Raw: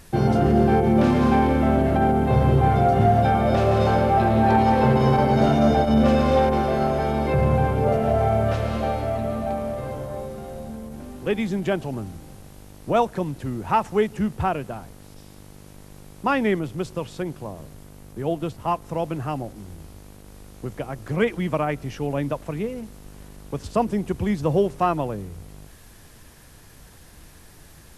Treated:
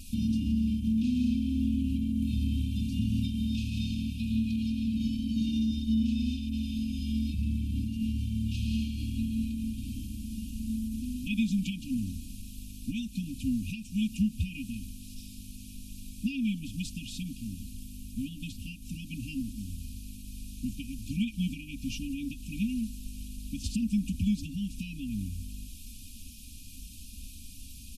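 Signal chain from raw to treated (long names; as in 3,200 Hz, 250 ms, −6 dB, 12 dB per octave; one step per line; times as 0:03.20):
comb filter 3.6 ms, depth 95%
downward compressor 6 to 1, threshold −23 dBFS, peak gain reduction 13 dB
linear-phase brick-wall band-stop 280–2,300 Hz
0:02.22–0:04.72: one half of a high-frequency compander encoder only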